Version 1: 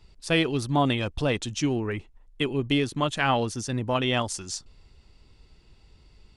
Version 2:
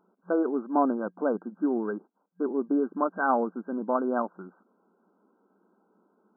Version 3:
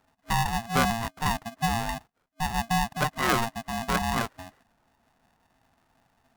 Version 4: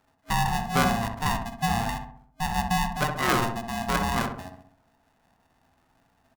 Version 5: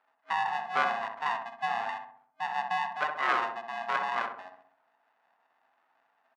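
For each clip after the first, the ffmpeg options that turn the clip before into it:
-af "afftfilt=real='re*between(b*sr/4096,180,1600)':imag='im*between(b*sr/4096,180,1600)':win_size=4096:overlap=0.75"
-af "aeval=exprs='val(0)*sgn(sin(2*PI*460*n/s))':c=same"
-filter_complex "[0:a]asplit=2[s0][s1];[s1]adelay=65,lowpass=f=1300:p=1,volume=0.631,asplit=2[s2][s3];[s3]adelay=65,lowpass=f=1300:p=1,volume=0.55,asplit=2[s4][s5];[s5]adelay=65,lowpass=f=1300:p=1,volume=0.55,asplit=2[s6][s7];[s7]adelay=65,lowpass=f=1300:p=1,volume=0.55,asplit=2[s8][s9];[s9]adelay=65,lowpass=f=1300:p=1,volume=0.55,asplit=2[s10][s11];[s11]adelay=65,lowpass=f=1300:p=1,volume=0.55,asplit=2[s12][s13];[s13]adelay=65,lowpass=f=1300:p=1,volume=0.55[s14];[s0][s2][s4][s6][s8][s10][s12][s14]amix=inputs=8:normalize=0"
-af "highpass=790,lowpass=2200"

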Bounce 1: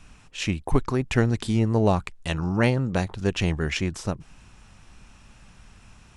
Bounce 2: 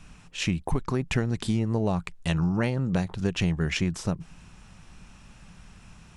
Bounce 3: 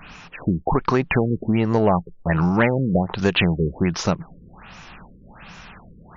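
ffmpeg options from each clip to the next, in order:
-af "equalizer=f=170:w=4.4:g=8.5,acompressor=threshold=0.0891:ratio=6"
-filter_complex "[0:a]asplit=2[s0][s1];[s1]highpass=f=720:p=1,volume=5.62,asoftclip=type=tanh:threshold=0.282[s2];[s0][s2]amix=inputs=2:normalize=0,lowpass=f=4000:p=1,volume=0.501,afftfilt=real='re*lt(b*sr/1024,510*pow(7300/510,0.5+0.5*sin(2*PI*1.3*pts/sr)))':imag='im*lt(b*sr/1024,510*pow(7300/510,0.5+0.5*sin(2*PI*1.3*pts/sr)))':win_size=1024:overlap=0.75,volume=2.11"

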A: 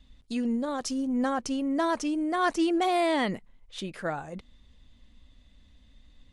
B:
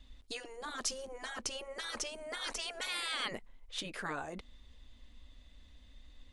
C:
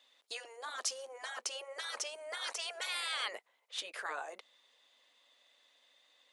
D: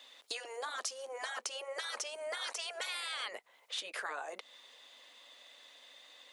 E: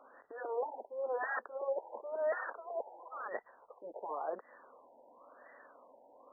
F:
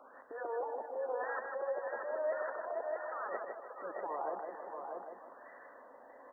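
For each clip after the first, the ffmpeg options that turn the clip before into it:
-af "equalizer=f=150:t=o:w=1.1:g=-11.5,afftfilt=real='re*lt(hypot(re,im),0.0891)':imag='im*lt(hypot(re,im),0.0891)':win_size=1024:overlap=0.75,volume=1.12"
-af "highpass=f=490:w=0.5412,highpass=f=490:w=1.3066"
-filter_complex "[0:a]acrossover=split=140[s0][s1];[s1]acompressor=threshold=0.00316:ratio=4[s2];[s0][s2]amix=inputs=2:normalize=0,volume=3.55"
-af "alimiter=level_in=2.99:limit=0.0631:level=0:latency=1:release=129,volume=0.335,afftfilt=real='re*lt(b*sr/1024,950*pow(2000/950,0.5+0.5*sin(2*PI*0.95*pts/sr)))':imag='im*lt(b*sr/1024,950*pow(2000/950,0.5+0.5*sin(2*PI*0.95*pts/sr)))':win_size=1024:overlap=0.75,volume=2.66"
-filter_complex "[0:a]asplit=2[s0][s1];[s1]aecho=0:1:454|637:0.158|0.376[s2];[s0][s2]amix=inputs=2:normalize=0,acrossover=split=410|1700[s3][s4][s5];[s3]acompressor=threshold=0.00316:ratio=4[s6];[s4]acompressor=threshold=0.01:ratio=4[s7];[s5]acompressor=threshold=0.00112:ratio=4[s8];[s6][s7][s8]amix=inputs=3:normalize=0,asplit=2[s9][s10];[s10]aecho=0:1:155|310|465|620:0.562|0.191|0.065|0.0221[s11];[s9][s11]amix=inputs=2:normalize=0,volume=1.33"

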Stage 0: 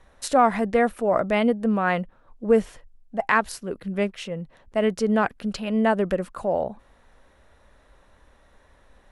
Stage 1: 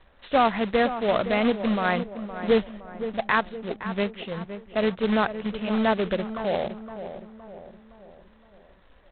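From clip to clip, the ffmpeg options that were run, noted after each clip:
-filter_complex "[0:a]aresample=8000,acrusher=bits=2:mode=log:mix=0:aa=0.000001,aresample=44100,asplit=2[s0][s1];[s1]adelay=515,lowpass=f=1600:p=1,volume=0.299,asplit=2[s2][s3];[s3]adelay=515,lowpass=f=1600:p=1,volume=0.5,asplit=2[s4][s5];[s5]adelay=515,lowpass=f=1600:p=1,volume=0.5,asplit=2[s6][s7];[s7]adelay=515,lowpass=f=1600:p=1,volume=0.5,asplit=2[s8][s9];[s9]adelay=515,lowpass=f=1600:p=1,volume=0.5[s10];[s0][s2][s4][s6][s8][s10]amix=inputs=6:normalize=0,volume=0.75"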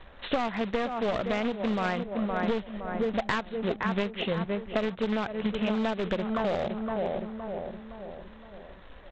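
-af "aresample=16000,aeval=exprs='clip(val(0),-1,0.0562)':c=same,aresample=44100,acompressor=threshold=0.0251:ratio=10,volume=2.37"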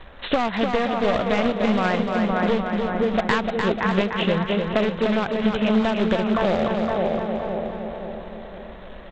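-af "aecho=1:1:299|598|897|1196|1495|1794:0.562|0.264|0.124|0.0584|0.0274|0.0129,volume=2.11"

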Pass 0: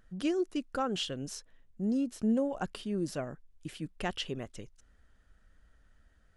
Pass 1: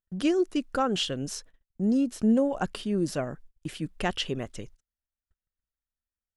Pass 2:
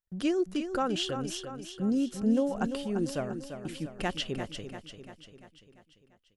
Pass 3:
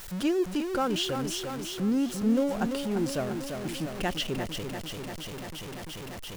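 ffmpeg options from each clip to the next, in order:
-af "agate=range=0.0112:threshold=0.00224:ratio=16:detection=peak,volume=2"
-af "aecho=1:1:344|688|1032|1376|1720|2064:0.355|0.192|0.103|0.0559|0.0302|0.0163,volume=0.668"
-af "aeval=exprs='val(0)+0.5*0.02*sgn(val(0))':c=same"

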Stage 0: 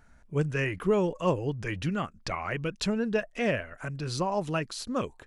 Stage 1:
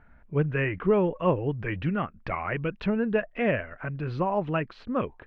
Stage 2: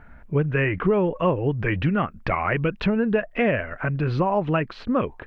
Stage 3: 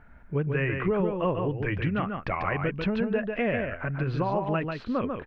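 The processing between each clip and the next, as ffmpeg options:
-af "lowpass=f=2600:w=0.5412,lowpass=f=2600:w=1.3066,volume=1.33"
-af "acompressor=threshold=0.0398:ratio=3,volume=2.82"
-af "aecho=1:1:143:0.562,volume=0.501"

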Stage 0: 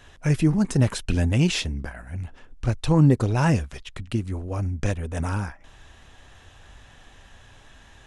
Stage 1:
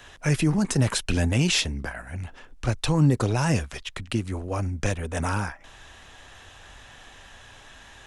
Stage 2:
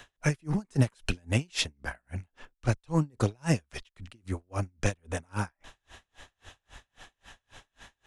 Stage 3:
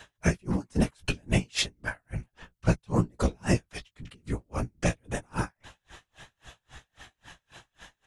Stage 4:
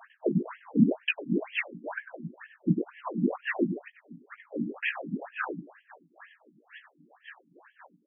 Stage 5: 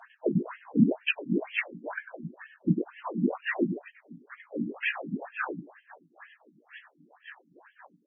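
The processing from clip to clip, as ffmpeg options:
-filter_complex "[0:a]lowshelf=f=360:g=-8,acrossover=split=160|4400[s0][s1][s2];[s1]alimiter=limit=0.075:level=0:latency=1:release=23[s3];[s0][s3][s2]amix=inputs=3:normalize=0,volume=1.88"
-af "aeval=exprs='val(0)*pow(10,-39*(0.5-0.5*cos(2*PI*3.7*n/s))/20)':c=same"
-filter_complex "[0:a]afftfilt=real='hypot(re,im)*cos(2*PI*random(0))':imag='hypot(re,im)*sin(2*PI*random(1))':win_size=512:overlap=0.75,asplit=2[s0][s1];[s1]adelay=17,volume=0.355[s2];[s0][s2]amix=inputs=2:normalize=0,volume=2.24"
-filter_complex "[0:a]asplit=2[s0][s1];[s1]adelay=98,lowpass=f=1000:p=1,volume=0.708,asplit=2[s2][s3];[s3]adelay=98,lowpass=f=1000:p=1,volume=0.36,asplit=2[s4][s5];[s5]adelay=98,lowpass=f=1000:p=1,volume=0.36,asplit=2[s6][s7];[s7]adelay=98,lowpass=f=1000:p=1,volume=0.36,asplit=2[s8][s9];[s9]adelay=98,lowpass=f=1000:p=1,volume=0.36[s10];[s2][s4][s6][s8][s10]amix=inputs=5:normalize=0[s11];[s0][s11]amix=inputs=2:normalize=0,afftfilt=real='re*between(b*sr/1024,220*pow(2400/220,0.5+0.5*sin(2*PI*2.1*pts/sr))/1.41,220*pow(2400/220,0.5+0.5*sin(2*PI*2.1*pts/sr))*1.41)':imag='im*between(b*sr/1024,220*pow(2400/220,0.5+0.5*sin(2*PI*2.1*pts/sr))/1.41,220*pow(2400/220,0.5+0.5*sin(2*PI*2.1*pts/sr))*1.41)':win_size=1024:overlap=0.75,volume=2.11"
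-ar 22050 -c:a libvorbis -b:a 16k

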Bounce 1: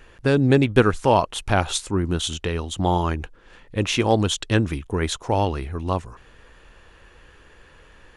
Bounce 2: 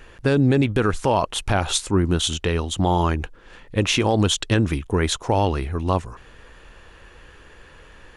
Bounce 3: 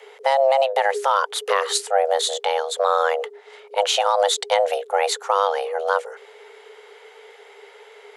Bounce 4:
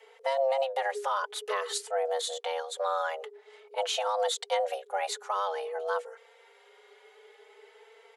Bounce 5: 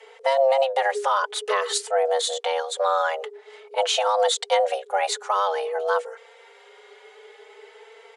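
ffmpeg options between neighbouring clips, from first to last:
-af "alimiter=level_in=3.76:limit=0.891:release=50:level=0:latency=1,volume=0.398"
-af "afreqshift=400"
-filter_complex "[0:a]asplit=2[s0][s1];[s1]adelay=4,afreqshift=0.5[s2];[s0][s2]amix=inputs=2:normalize=1,volume=0.422"
-af "aresample=22050,aresample=44100,volume=2.51"

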